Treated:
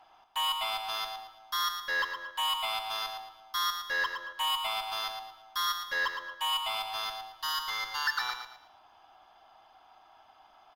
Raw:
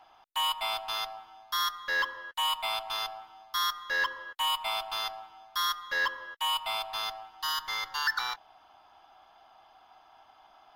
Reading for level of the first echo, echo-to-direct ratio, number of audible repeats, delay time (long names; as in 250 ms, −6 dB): −7.5 dB, −7.0 dB, 3, 113 ms